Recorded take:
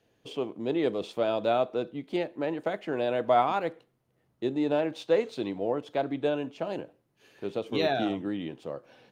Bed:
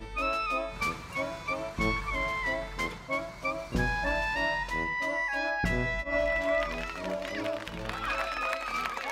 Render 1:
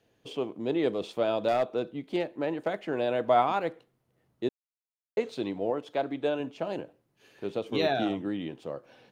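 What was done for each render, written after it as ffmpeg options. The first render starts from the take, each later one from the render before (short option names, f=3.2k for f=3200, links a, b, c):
-filter_complex "[0:a]asettb=1/sr,asplit=3[a][b][c];[a]atrim=end=1.484[d];[b]atrim=start=1.48:end=2.85,asetpts=PTS-STARTPTS,afade=t=in:d=0.004:c=qsin,afade=t=out:st=1.366:d=0.004:c=qsin,asoftclip=type=hard:threshold=-20dB[e];[c]atrim=start=2.846[f];[d][e]acrossfade=d=0.004:c1=hsin:c2=qsin[g];[g][f]acrossfade=d=0.004:c1=qsin:c2=hsin,asettb=1/sr,asplit=3[h][i][j];[h]atrim=end=5.704[k];[i]atrim=start=5.7:end=6.4,asetpts=PTS-STARTPTS,afade=t=in:d=0.004:c=qsin,afade=t=out:st=0.696:d=0.004:c=qsin,lowshelf=f=160:g=-8.5[l];[j]atrim=start=6.396[m];[k][l]acrossfade=d=0.004:c1=hsin:c2=qsin[n];[n][m]acrossfade=d=0.004:c1=qsin:c2=hsin,asplit=3[o][p][q];[o]atrim=end=4.49,asetpts=PTS-STARTPTS,afade=t=out:st=4.486:d=0.004:c=hsin[r];[p]atrim=start=4.49:end=5.17,asetpts=PTS-STARTPTS,volume=0[s];[q]atrim=start=5.17,asetpts=PTS-STARTPTS,afade=t=in:d=0.004:c=hsin[t];[r][s][t]concat=n=3:v=0:a=1"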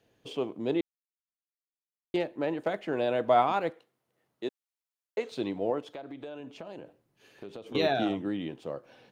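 -filter_complex "[0:a]asettb=1/sr,asplit=3[a][b][c];[a]atrim=end=3.704[d];[b]atrim=start=3.7:end=5.32,asetpts=PTS-STARTPTS,afade=t=in:d=0.004:c=qsin,afade=t=out:st=1.616:d=0.004:c=qsin,highpass=f=480:p=1[e];[c]atrim=start=5.316[f];[d][e]acrossfade=d=0.004:c1=hsin:c2=qsin[g];[g][f]acrossfade=d=0.004:c1=qsin:c2=hsin,asettb=1/sr,asplit=3[h][i][j];[h]atrim=end=5.864[k];[i]atrim=start=5.86:end=7.75,asetpts=PTS-STARTPTS,afade=t=in:d=0.004:c=qsin,afade=t=out:st=1.886:d=0.004:c=qsin,acompressor=threshold=-38dB:ratio=8:attack=3.2:release=140:knee=1:detection=peak[l];[j]atrim=start=7.746[m];[k][l]acrossfade=d=0.004:c1=hsin:c2=qsin[n];[n][m]acrossfade=d=0.004:c1=qsin:c2=hsin,asplit=3[o][p][q];[o]atrim=end=0.81,asetpts=PTS-STARTPTS,afade=t=out:st=0.806:d=0.004:c=hsin[r];[p]atrim=start=0.81:end=2.14,asetpts=PTS-STARTPTS,volume=0[s];[q]atrim=start=2.14,asetpts=PTS-STARTPTS,afade=t=in:d=0.004:c=hsin[t];[r][s][t]concat=n=3:v=0:a=1"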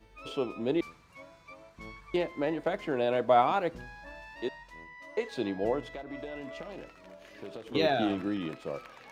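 -filter_complex "[1:a]volume=-17.5dB[a];[0:a][a]amix=inputs=2:normalize=0"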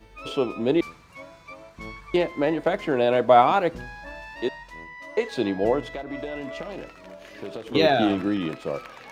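-af "volume=7.5dB"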